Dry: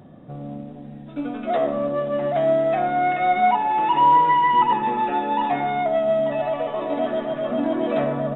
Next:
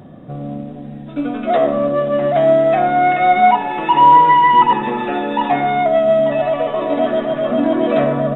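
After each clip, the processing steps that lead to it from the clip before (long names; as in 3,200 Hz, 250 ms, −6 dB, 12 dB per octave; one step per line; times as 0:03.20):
notch filter 870 Hz, Q 24
level +7 dB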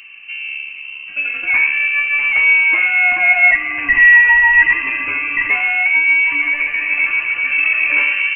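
voice inversion scrambler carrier 2,900 Hz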